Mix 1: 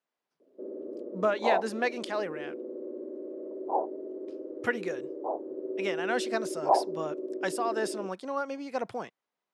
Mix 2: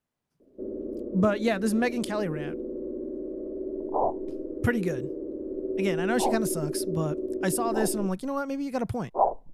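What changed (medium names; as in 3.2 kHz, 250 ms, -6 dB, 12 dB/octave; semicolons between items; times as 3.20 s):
second sound: entry +2.50 s; master: remove band-pass 430–5600 Hz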